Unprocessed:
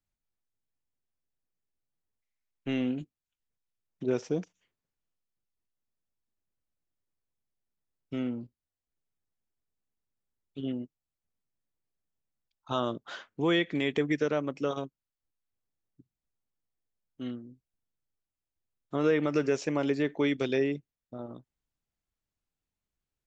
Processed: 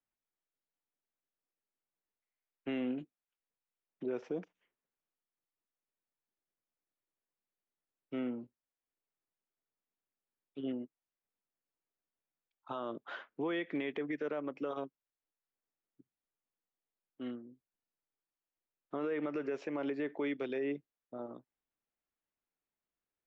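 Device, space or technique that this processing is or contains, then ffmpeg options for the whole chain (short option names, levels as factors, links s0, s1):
DJ mixer with the lows and highs turned down: -filter_complex "[0:a]acrossover=split=230 3000:gain=0.178 1 0.0708[s0][s1][s2];[s0][s1][s2]amix=inputs=3:normalize=0,alimiter=level_in=1.41:limit=0.0631:level=0:latency=1:release=103,volume=0.708,volume=0.891"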